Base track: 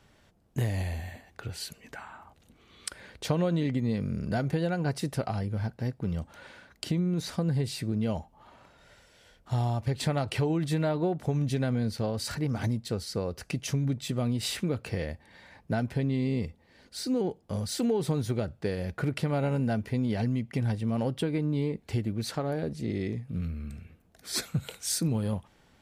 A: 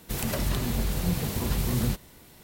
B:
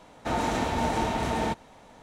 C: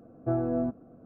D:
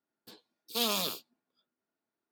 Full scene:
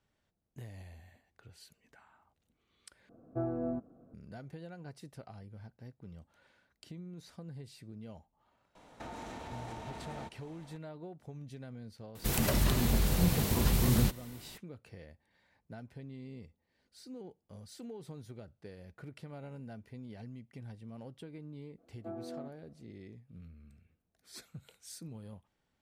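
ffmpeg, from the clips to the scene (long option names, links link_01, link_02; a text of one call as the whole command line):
ffmpeg -i bed.wav -i cue0.wav -i cue1.wav -i cue2.wav -filter_complex "[3:a]asplit=2[link_01][link_02];[0:a]volume=-18.5dB[link_03];[2:a]acompressor=threshold=-35dB:ratio=6:attack=3.2:release=140:knee=1:detection=peak[link_04];[link_02]highpass=250[link_05];[link_03]asplit=2[link_06][link_07];[link_06]atrim=end=3.094[link_08];[link_01]atrim=end=1.05,asetpts=PTS-STARTPTS,volume=-7dB[link_09];[link_07]atrim=start=4.136[link_10];[link_04]atrim=end=2.02,asetpts=PTS-STARTPTS,volume=-6.5dB,afade=type=in:duration=0.004:curve=hsin,afade=type=out:start_time=2.016:duration=0.004:curve=hsin,adelay=8750[link_11];[1:a]atrim=end=2.43,asetpts=PTS-STARTPTS,volume=-0.5dB,afade=type=in:duration=0.004:curve=hsin,afade=type=out:start_time=2.426:duration=0.004:curve=hsin,adelay=12150[link_12];[link_05]atrim=end=1.05,asetpts=PTS-STARTPTS,volume=-13.5dB,afade=type=in:duration=0.004:curve=hsin,afade=type=out:start_time=1.046:duration=0.004:curve=hsin,adelay=21780[link_13];[link_08][link_09]acrossfade=duration=0.004:curve1=hsin:curve2=hsin[link_14];[link_14][link_10]acrossfade=duration=0.004:curve1=hsin:curve2=hsin[link_15];[link_15][link_11][link_12][link_13]amix=inputs=4:normalize=0" out.wav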